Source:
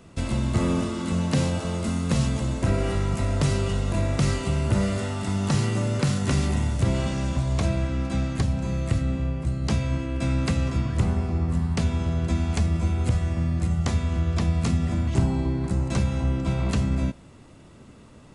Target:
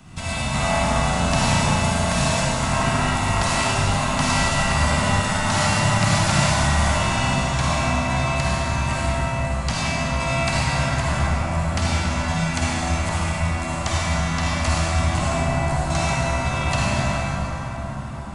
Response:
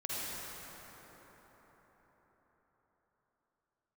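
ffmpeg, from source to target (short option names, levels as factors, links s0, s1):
-filter_complex "[0:a]acrossover=split=280|840[s0][s1][s2];[s0]acompressor=threshold=0.0141:ratio=10[s3];[s1]aeval=exprs='val(0)*sin(2*PI*410*n/s)':c=same[s4];[s3][s4][s2]amix=inputs=3:normalize=0[s5];[1:a]atrim=start_sample=2205[s6];[s5][s6]afir=irnorm=-1:irlink=0,volume=2.82"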